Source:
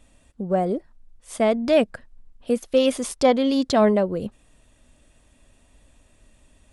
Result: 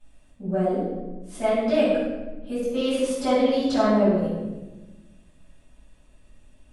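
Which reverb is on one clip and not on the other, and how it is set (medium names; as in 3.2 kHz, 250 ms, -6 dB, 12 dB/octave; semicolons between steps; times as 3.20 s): simulated room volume 710 m³, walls mixed, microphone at 8.4 m; trim -17 dB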